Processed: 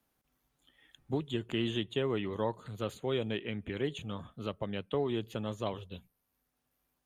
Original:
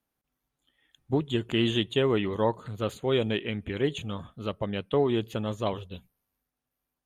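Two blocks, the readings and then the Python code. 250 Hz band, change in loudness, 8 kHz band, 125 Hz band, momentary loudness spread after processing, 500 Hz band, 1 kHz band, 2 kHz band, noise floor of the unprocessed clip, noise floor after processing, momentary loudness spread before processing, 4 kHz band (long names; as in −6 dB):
−7.0 dB, −7.0 dB, −6.0 dB, −6.5 dB, 8 LU, −7.0 dB, −7.0 dB, −7.0 dB, below −85 dBFS, −82 dBFS, 11 LU, −7.5 dB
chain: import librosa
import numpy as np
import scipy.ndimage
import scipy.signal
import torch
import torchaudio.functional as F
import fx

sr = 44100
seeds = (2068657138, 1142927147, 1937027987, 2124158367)

y = fx.band_squash(x, sr, depth_pct=40)
y = y * 10.0 ** (-7.0 / 20.0)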